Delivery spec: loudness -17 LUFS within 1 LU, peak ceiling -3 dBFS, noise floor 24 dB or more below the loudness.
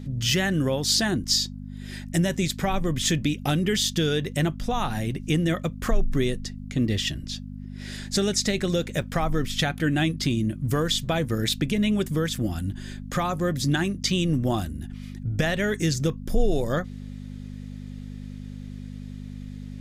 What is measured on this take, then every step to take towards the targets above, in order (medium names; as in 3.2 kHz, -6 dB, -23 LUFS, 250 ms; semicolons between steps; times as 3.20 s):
dropouts 2; longest dropout 3.7 ms; hum 50 Hz; highest harmonic 250 Hz; hum level -34 dBFS; loudness -25.5 LUFS; peak level -9.0 dBFS; loudness target -17.0 LUFS
-> interpolate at 9.02/12.35 s, 3.7 ms; de-hum 50 Hz, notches 5; trim +8.5 dB; peak limiter -3 dBFS